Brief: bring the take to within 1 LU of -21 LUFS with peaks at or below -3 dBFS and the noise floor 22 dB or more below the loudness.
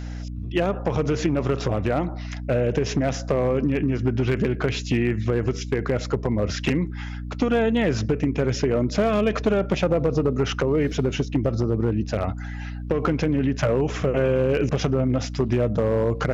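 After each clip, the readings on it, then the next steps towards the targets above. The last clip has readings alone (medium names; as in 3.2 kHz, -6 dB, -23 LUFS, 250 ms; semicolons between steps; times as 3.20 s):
clipped samples 0.9%; clipping level -13.5 dBFS; hum 60 Hz; highest harmonic 300 Hz; hum level -29 dBFS; loudness -23.5 LUFS; peak level -13.5 dBFS; loudness target -21.0 LUFS
-> clip repair -13.5 dBFS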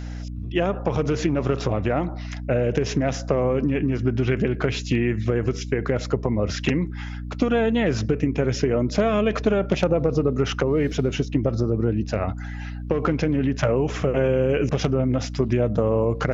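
clipped samples 0.0%; hum 60 Hz; highest harmonic 300 Hz; hum level -29 dBFS
-> de-hum 60 Hz, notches 5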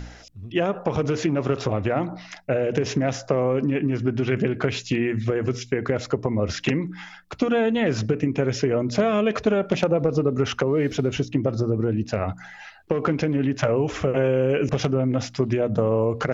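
hum not found; loudness -23.5 LUFS; peak level -7.0 dBFS; loudness target -21.0 LUFS
-> trim +2.5 dB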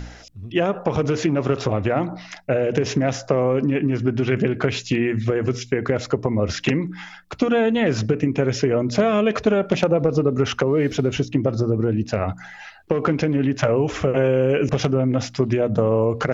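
loudness -21.0 LUFS; peak level -4.5 dBFS; noise floor -43 dBFS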